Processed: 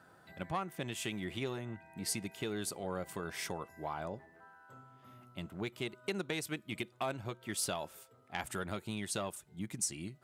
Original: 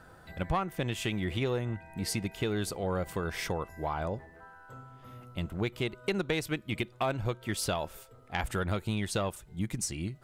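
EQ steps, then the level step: high-pass 140 Hz 12 dB/octave; band-stop 490 Hz, Q 12; dynamic bell 9.2 kHz, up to +7 dB, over -54 dBFS, Q 0.78; -6.0 dB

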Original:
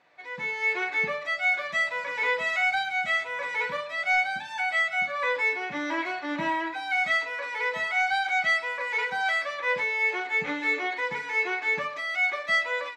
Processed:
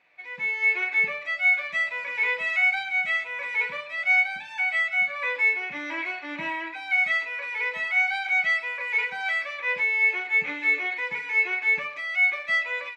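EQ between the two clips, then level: peaking EQ 2.4 kHz +13 dB 0.57 oct; -6.0 dB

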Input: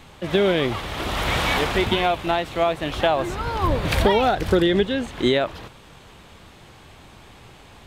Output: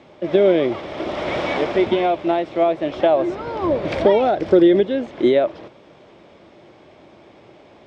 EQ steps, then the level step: cabinet simulation 290–8200 Hz, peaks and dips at 340 Hz +7 dB, 600 Hz +10 dB, 2.2 kHz +6 dB, 3.4 kHz +4 dB, 5.3 kHz +8 dB; tilt EQ -4 dB/octave; -4.0 dB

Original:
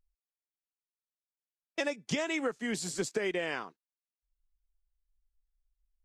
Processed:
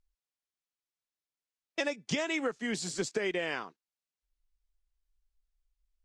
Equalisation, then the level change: distance through air 83 m; treble shelf 4.2 kHz +9 dB; 0.0 dB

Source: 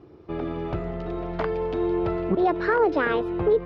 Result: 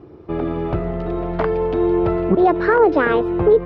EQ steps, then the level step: treble shelf 2.6 kHz -8 dB; +7.5 dB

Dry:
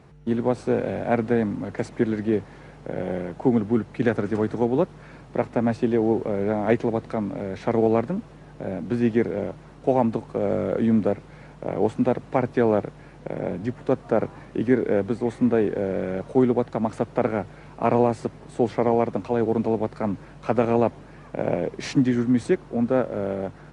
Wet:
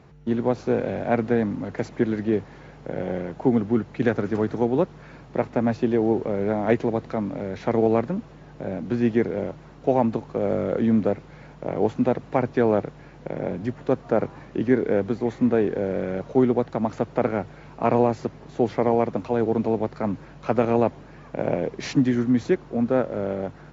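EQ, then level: brick-wall FIR low-pass 7.4 kHz; 0.0 dB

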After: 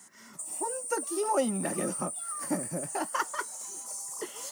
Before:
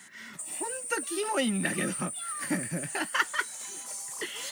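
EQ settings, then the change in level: bass shelf 230 Hz -6.5 dB; dynamic bell 670 Hz, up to +5 dB, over -44 dBFS, Q 0.72; high-order bell 2.5 kHz -12 dB; 0.0 dB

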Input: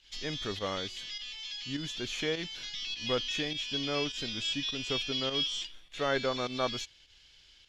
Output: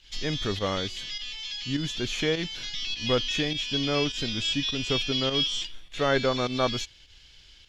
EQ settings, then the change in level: bass shelf 210 Hz +7 dB; +5.0 dB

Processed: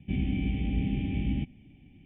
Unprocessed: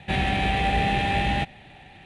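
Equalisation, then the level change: cascade formant filter i; distance through air 150 m; bass shelf 190 Hz +12 dB; 0.0 dB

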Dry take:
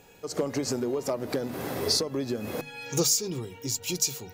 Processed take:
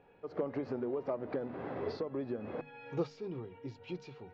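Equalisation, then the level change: distance through air 320 m; tape spacing loss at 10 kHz 33 dB; bass shelf 310 Hz -9.5 dB; -1.0 dB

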